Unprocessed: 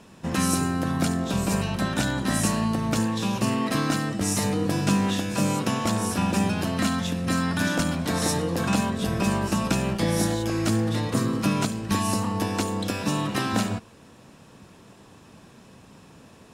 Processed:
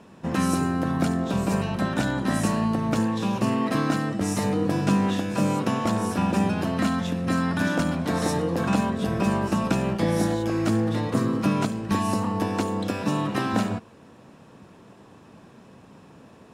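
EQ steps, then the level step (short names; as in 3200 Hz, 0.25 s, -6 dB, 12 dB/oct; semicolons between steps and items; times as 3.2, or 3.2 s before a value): low shelf 79 Hz -10.5 dB; high shelf 2500 Hz -10.5 dB; +2.5 dB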